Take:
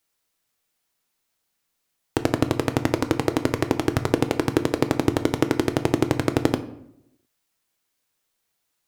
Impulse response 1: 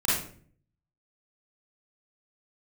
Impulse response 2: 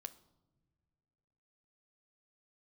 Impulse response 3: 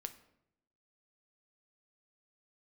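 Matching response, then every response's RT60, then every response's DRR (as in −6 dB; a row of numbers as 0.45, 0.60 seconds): 3; 0.50 s, non-exponential decay, 0.80 s; −8.0, 11.0, 8.5 decibels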